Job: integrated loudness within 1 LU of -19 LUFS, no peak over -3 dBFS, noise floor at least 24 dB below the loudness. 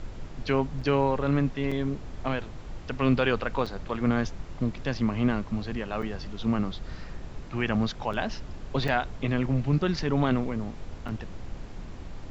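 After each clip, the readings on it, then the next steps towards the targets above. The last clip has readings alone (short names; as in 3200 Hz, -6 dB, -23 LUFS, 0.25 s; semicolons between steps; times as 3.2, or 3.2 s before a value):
dropouts 7; longest dropout 5.1 ms; noise floor -41 dBFS; noise floor target -53 dBFS; loudness -28.5 LUFS; peak -10.0 dBFS; loudness target -19.0 LUFS
-> interpolate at 0.81/1.71/3.66/6.02/8.13/8.88/11.08, 5.1 ms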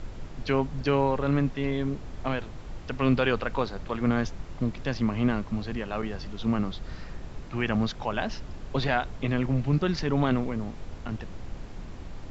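dropouts 0; noise floor -41 dBFS; noise floor target -53 dBFS
-> noise print and reduce 12 dB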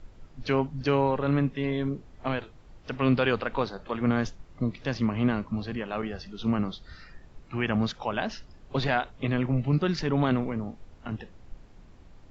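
noise floor -52 dBFS; noise floor target -53 dBFS
-> noise print and reduce 6 dB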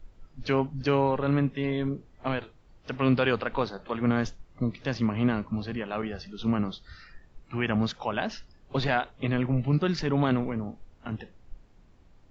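noise floor -57 dBFS; loudness -28.5 LUFS; peak -10.0 dBFS; loudness target -19.0 LUFS
-> gain +9.5 dB; limiter -3 dBFS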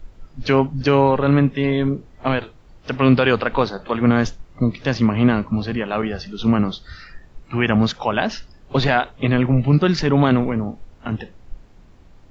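loudness -19.5 LUFS; peak -3.0 dBFS; noise floor -48 dBFS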